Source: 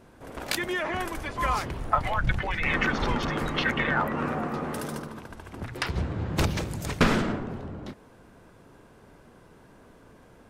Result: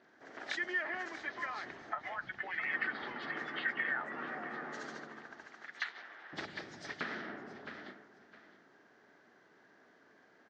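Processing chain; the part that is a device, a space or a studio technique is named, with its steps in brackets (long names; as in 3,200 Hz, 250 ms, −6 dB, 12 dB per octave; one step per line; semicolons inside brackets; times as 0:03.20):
0:05.46–0:06.33: high-pass filter 1,000 Hz 12 dB per octave
repeating echo 661 ms, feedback 22%, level −16.5 dB
hearing aid with frequency lowering (hearing-aid frequency compression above 2,800 Hz 1.5 to 1; downward compressor 3 to 1, threshold −29 dBFS, peak gain reduction 10 dB; loudspeaker in its box 370–5,600 Hz, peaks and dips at 510 Hz −8 dB, 1,000 Hz −7 dB, 1,800 Hz +9 dB, 2,600 Hz −6 dB)
level −6.5 dB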